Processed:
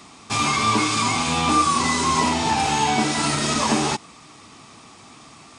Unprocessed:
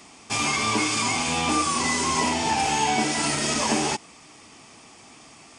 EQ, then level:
parametric band 120 Hz +6.5 dB 2.5 octaves
parametric band 1,200 Hz +7 dB 0.62 octaves
parametric band 3,900 Hz +9 dB 0.21 octaves
0.0 dB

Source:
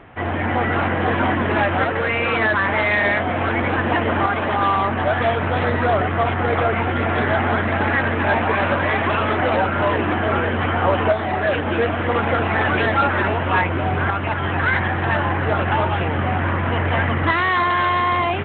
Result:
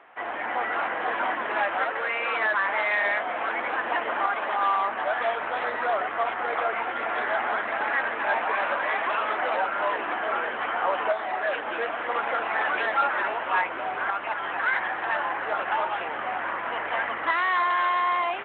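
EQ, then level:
high-pass filter 770 Hz 12 dB per octave
high-shelf EQ 2,600 Hz −10 dB
−2.0 dB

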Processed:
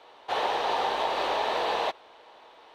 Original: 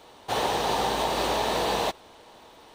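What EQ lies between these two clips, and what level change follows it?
three-way crossover with the lows and the highs turned down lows −17 dB, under 390 Hz, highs −18 dB, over 4,200 Hz
0.0 dB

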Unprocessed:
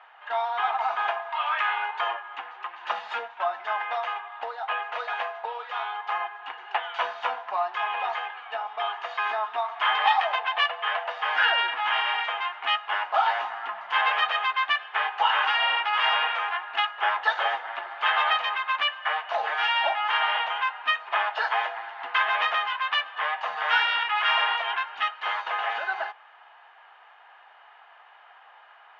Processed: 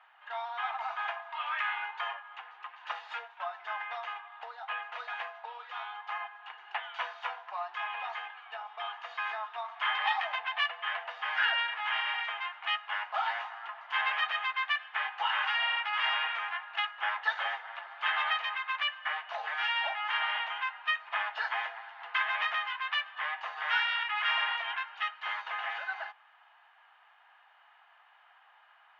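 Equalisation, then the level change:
Bessel high-pass filter 900 Hz, order 2
dynamic equaliser 2,000 Hz, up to +4 dB, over −37 dBFS, Q 2.4
−7.0 dB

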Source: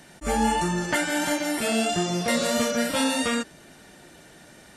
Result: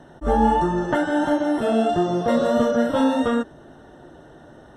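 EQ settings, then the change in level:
moving average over 19 samples
parametric band 190 Hz −14.5 dB 0.21 octaves
+7.5 dB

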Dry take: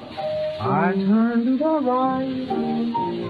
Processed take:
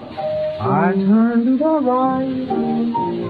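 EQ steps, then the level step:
high-shelf EQ 2,500 Hz −9 dB
+4.5 dB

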